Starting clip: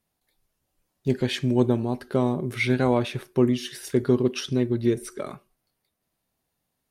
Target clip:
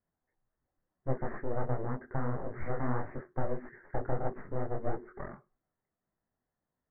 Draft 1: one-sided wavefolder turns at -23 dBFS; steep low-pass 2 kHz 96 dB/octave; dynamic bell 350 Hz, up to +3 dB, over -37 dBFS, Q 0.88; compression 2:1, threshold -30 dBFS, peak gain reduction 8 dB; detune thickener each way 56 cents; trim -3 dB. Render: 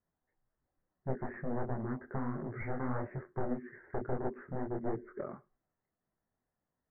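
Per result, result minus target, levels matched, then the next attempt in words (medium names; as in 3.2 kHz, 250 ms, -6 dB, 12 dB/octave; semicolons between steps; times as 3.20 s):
one-sided wavefolder: distortion -24 dB; compression: peak gain reduction +3.5 dB
one-sided wavefolder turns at -35 dBFS; steep low-pass 2 kHz 96 dB/octave; dynamic bell 350 Hz, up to +3 dB, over -37 dBFS, Q 0.88; compression 2:1, threshold -30 dBFS, peak gain reduction 9 dB; detune thickener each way 56 cents; trim -3 dB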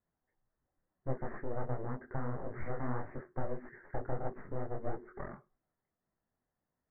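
compression: peak gain reduction +4.5 dB
one-sided wavefolder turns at -35 dBFS; steep low-pass 2 kHz 96 dB/octave; dynamic bell 350 Hz, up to +3 dB, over -37 dBFS, Q 0.88; compression 2:1, threshold -21.5 dBFS, peak gain reduction 4.5 dB; detune thickener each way 56 cents; trim -3 dB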